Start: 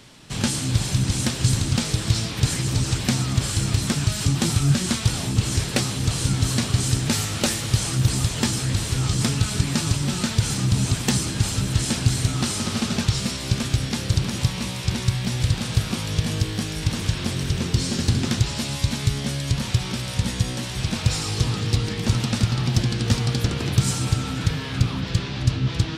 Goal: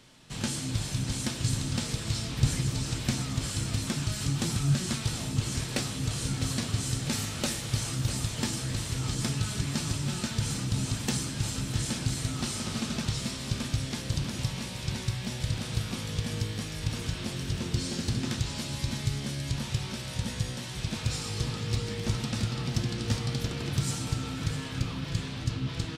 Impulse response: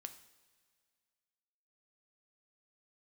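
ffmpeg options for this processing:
-filter_complex "[0:a]asettb=1/sr,asplit=3[link_01][link_02][link_03];[link_01]atrim=end=2.274[link_04];[link_02]atrim=start=2.27:end=2.7,asetpts=PTS-STARTPTS,afade=type=in:duration=0.004:curve=qsin,afade=type=out:start_time=0.426:duration=0.004:curve=qsin,lowshelf=frequency=150:gain=9[link_05];[link_03]atrim=start=2.696[link_06];[link_04][link_05]acrossfade=duration=0.004:curve1=hsin:curve2=qsin[link_07];[link_07][link_06]acrossfade=duration=0.004:curve1=qsin:curve2=hsin,aecho=1:1:653|1306|1959|2612|3265|3918:0.251|0.141|0.0788|0.0441|0.0247|0.0138[link_08];[1:a]atrim=start_sample=2205,asetrate=74970,aresample=44100[link_09];[link_08][link_09]afir=irnorm=-1:irlink=0,volume=1.5dB"

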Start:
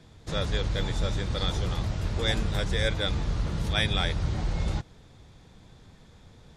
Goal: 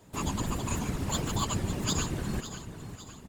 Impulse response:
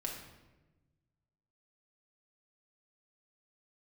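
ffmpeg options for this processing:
-af "asetrate=88200,aresample=44100,aecho=1:1:554|1108|1662|2216|2770:0.266|0.128|0.0613|0.0294|0.0141,afftfilt=real='hypot(re,im)*cos(2*PI*random(0))':imag='hypot(re,im)*sin(2*PI*random(1))':win_size=512:overlap=0.75,volume=2dB"

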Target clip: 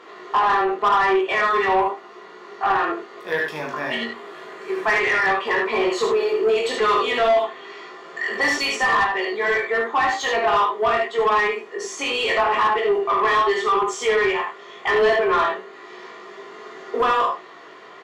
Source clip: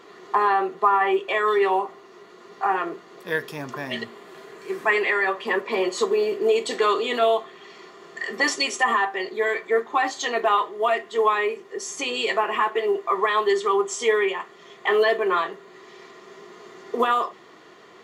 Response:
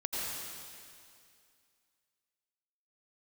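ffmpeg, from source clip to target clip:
-filter_complex "[0:a]aecho=1:1:39|74:0.422|0.596,flanger=delay=18.5:depth=2.6:speed=0.87,asplit=2[link_01][link_02];[link_02]highpass=frequency=720:poles=1,volume=18dB,asoftclip=type=tanh:threshold=-7.5dB[link_03];[link_01][link_03]amix=inputs=2:normalize=0,lowpass=frequency=2100:poles=1,volume=-6dB,volume=-1.5dB"

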